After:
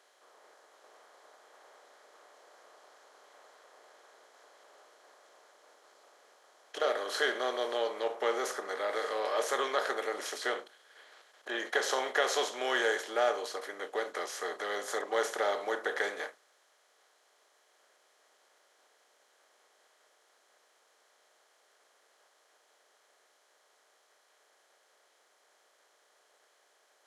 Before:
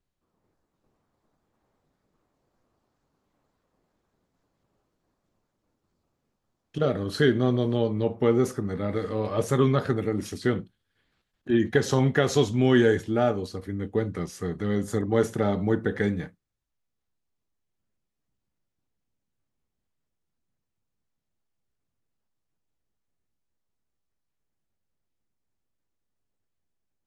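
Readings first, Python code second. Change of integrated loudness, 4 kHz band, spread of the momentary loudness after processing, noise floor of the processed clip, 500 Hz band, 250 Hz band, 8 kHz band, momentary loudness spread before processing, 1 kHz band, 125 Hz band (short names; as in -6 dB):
-7.5 dB, +0.5 dB, 8 LU, -69 dBFS, -7.5 dB, -21.0 dB, 0.0 dB, 10 LU, 0.0 dB, under -40 dB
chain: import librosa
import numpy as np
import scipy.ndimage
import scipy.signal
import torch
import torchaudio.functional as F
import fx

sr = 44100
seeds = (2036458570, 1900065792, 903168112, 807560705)

y = fx.bin_compress(x, sr, power=0.6)
y = scipy.signal.sosfilt(scipy.signal.butter(4, 550.0, 'highpass', fs=sr, output='sos'), y)
y = fx.end_taper(y, sr, db_per_s=470.0)
y = F.gain(torch.from_numpy(y), -4.0).numpy()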